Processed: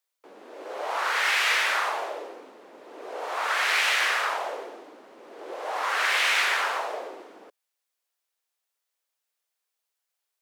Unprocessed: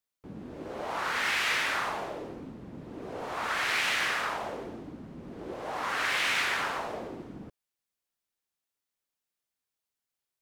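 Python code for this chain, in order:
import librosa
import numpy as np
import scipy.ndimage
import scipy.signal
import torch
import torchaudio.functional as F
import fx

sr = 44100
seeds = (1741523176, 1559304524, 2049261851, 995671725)

y = scipy.signal.sosfilt(scipy.signal.butter(4, 440.0, 'highpass', fs=sr, output='sos'), x)
y = y * 10.0 ** (5.0 / 20.0)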